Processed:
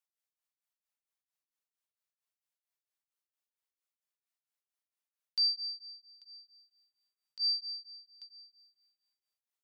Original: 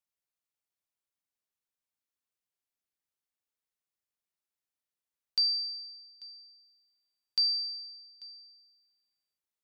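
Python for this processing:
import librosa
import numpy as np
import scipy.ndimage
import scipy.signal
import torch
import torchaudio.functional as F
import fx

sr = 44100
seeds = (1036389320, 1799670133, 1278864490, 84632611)

y = scipy.signal.sosfilt(scipy.signal.butter(2, 560.0, 'highpass', fs=sr, output='sos'), x)
y = y * np.abs(np.cos(np.pi * 4.4 * np.arange(len(y)) / sr))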